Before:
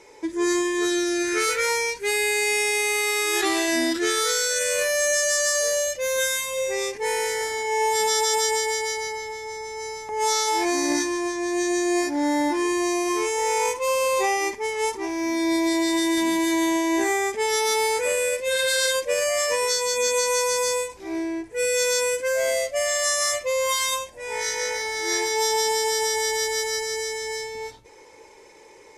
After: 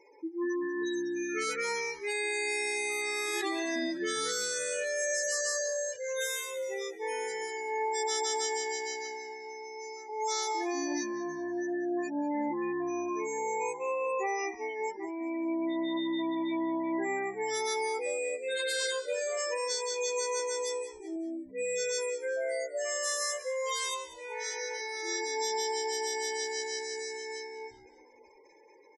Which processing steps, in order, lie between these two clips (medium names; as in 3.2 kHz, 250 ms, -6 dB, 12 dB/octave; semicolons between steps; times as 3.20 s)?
spectral gate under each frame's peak -15 dB strong; 20.39–21.16 s: comb 5.5 ms, depth 44%; frequency-shifting echo 193 ms, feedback 39%, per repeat -65 Hz, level -16 dB; trim -9 dB